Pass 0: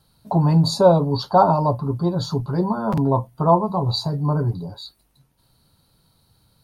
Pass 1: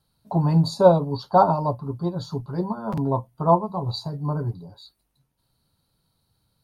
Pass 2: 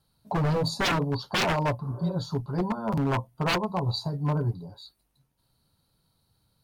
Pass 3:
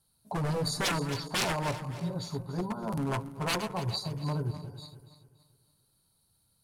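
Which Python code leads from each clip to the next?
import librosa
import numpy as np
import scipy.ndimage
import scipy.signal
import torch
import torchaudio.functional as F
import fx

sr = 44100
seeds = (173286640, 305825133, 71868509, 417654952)

y1 = fx.upward_expand(x, sr, threshold_db=-28.0, expansion=1.5)
y2 = fx.spec_repair(y1, sr, seeds[0], start_s=1.86, length_s=0.24, low_hz=270.0, high_hz=1800.0, source='both')
y2 = 10.0 ** (-19.5 / 20.0) * (np.abs((y2 / 10.0 ** (-19.5 / 20.0) + 3.0) % 4.0 - 2.0) - 1.0)
y3 = fx.reverse_delay_fb(y2, sr, ms=143, feedback_pct=61, wet_db=-11)
y3 = fx.peak_eq(y3, sr, hz=9900.0, db=13.5, octaves=1.2)
y3 = y3 * librosa.db_to_amplitude(-6.0)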